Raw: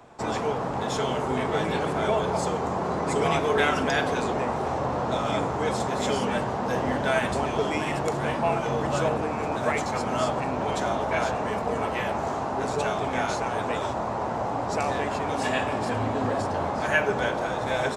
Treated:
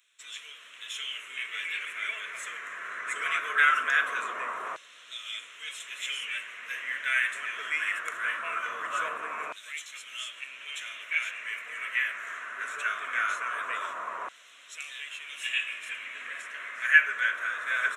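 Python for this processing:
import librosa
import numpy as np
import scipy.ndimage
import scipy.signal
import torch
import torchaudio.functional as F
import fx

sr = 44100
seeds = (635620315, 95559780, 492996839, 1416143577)

y = fx.fixed_phaser(x, sr, hz=2000.0, stages=4)
y = fx.filter_lfo_highpass(y, sr, shape='saw_down', hz=0.21, low_hz=970.0, high_hz=3900.0, q=2.5)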